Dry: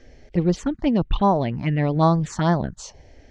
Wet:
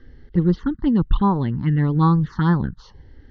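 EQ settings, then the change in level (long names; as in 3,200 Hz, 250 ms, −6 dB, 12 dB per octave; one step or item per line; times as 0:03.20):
high-frequency loss of the air 300 metres
phaser with its sweep stopped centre 2,400 Hz, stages 6
+4.5 dB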